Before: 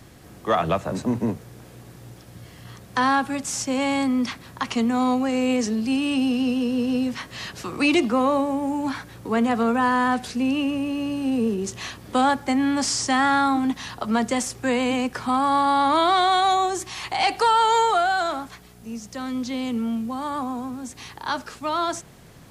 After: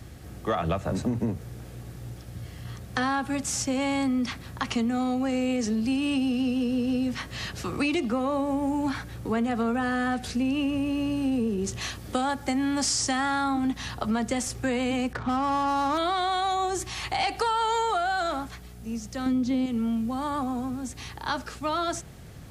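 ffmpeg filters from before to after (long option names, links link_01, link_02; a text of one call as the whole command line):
ffmpeg -i in.wav -filter_complex "[0:a]asettb=1/sr,asplit=3[link_01][link_02][link_03];[link_01]atrim=end=11.814[link_04];[link_02]atrim=start=11.81:end=13.44,asetpts=PTS-STARTPTS,afade=type=in:duration=0.004:curve=qsin,afade=type=out:start_time=1.626:duration=0.004:curve=qsin,bass=frequency=250:gain=-2,treble=frequency=4000:gain=4[link_05];[link_03]atrim=start=13.436[link_06];[link_04][link_05]acrossfade=duration=0.004:curve1=hsin:curve2=qsin[link_07];[link_07][link_06]acrossfade=duration=0.004:curve1=qsin:curve2=hsin,asettb=1/sr,asplit=3[link_08][link_09][link_10];[link_08]atrim=end=15.134[link_11];[link_09]atrim=start=15.13:end=15.98,asetpts=PTS-STARTPTS,afade=type=in:duration=0.004:curve=qsin,afade=type=out:start_time=0.846:duration=0.004:curve=qsin,adynamicsmooth=sensitivity=3:basefreq=750[link_12];[link_10]atrim=start=15.976[link_13];[link_11][link_12]acrossfade=duration=0.004:curve1=hsin:curve2=qsin[link_14];[link_14][link_13]acrossfade=duration=0.004:curve1=qsin:curve2=hsin,asettb=1/sr,asplit=3[link_15][link_16][link_17];[link_15]atrim=end=19.264[link_18];[link_16]atrim=start=19.26:end=19.66,asetpts=PTS-STARTPTS,afade=type=in:duration=0.004:curve=qsin,afade=type=out:start_time=0.396:duration=0.004:curve=qsin,equalizer=frequency=230:width_type=o:width=3:gain=9.5[link_19];[link_17]atrim=start=19.656[link_20];[link_18][link_19]acrossfade=duration=0.004:curve1=hsin:curve2=qsin[link_21];[link_21][link_20]acrossfade=duration=0.004:curve1=qsin:curve2=hsin,equalizer=frequency=64:width=0.79:gain=11,bandreject=frequency=1000:width=10,acompressor=threshold=-22dB:ratio=6,volume=-1dB" out.wav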